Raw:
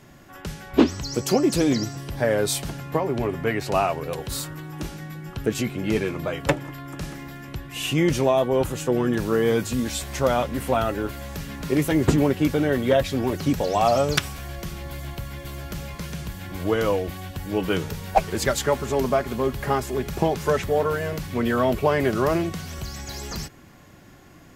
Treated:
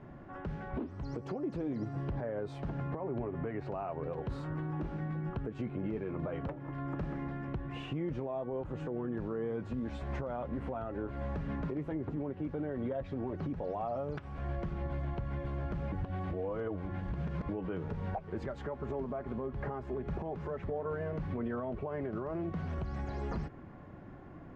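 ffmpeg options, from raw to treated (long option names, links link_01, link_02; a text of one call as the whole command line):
ffmpeg -i in.wav -filter_complex "[0:a]asplit=3[link_01][link_02][link_03];[link_01]atrim=end=15.922[link_04];[link_02]atrim=start=15.918:end=17.492,asetpts=PTS-STARTPTS,areverse[link_05];[link_03]atrim=start=17.488[link_06];[link_04][link_05]acrossfade=duration=0.004:curve1=hsin:curve2=hsin[link_07];[link_07][link_06]acrossfade=duration=0.004:curve1=hsin:curve2=hsin,acompressor=threshold=-30dB:ratio=6,lowpass=1200,alimiter=level_in=4dB:limit=-24dB:level=0:latency=1:release=90,volume=-4dB" out.wav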